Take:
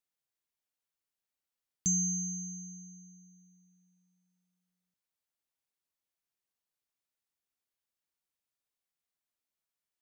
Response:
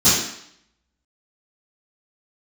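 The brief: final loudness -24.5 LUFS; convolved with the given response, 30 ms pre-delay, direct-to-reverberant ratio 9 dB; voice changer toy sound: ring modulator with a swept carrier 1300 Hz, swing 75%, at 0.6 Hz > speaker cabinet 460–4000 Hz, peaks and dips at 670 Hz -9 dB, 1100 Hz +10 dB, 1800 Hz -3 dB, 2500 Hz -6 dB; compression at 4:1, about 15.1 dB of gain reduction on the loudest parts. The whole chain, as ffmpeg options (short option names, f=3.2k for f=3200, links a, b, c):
-filter_complex "[0:a]acompressor=threshold=-44dB:ratio=4,asplit=2[a][b];[1:a]atrim=start_sample=2205,adelay=30[c];[b][c]afir=irnorm=-1:irlink=0,volume=-29.5dB[d];[a][d]amix=inputs=2:normalize=0,aeval=exprs='val(0)*sin(2*PI*1300*n/s+1300*0.75/0.6*sin(2*PI*0.6*n/s))':c=same,highpass=460,equalizer=f=670:t=q:w=4:g=-9,equalizer=f=1.1k:t=q:w=4:g=10,equalizer=f=1.8k:t=q:w=4:g=-3,equalizer=f=2.5k:t=q:w=4:g=-6,lowpass=f=4k:w=0.5412,lowpass=f=4k:w=1.3066,volume=23dB"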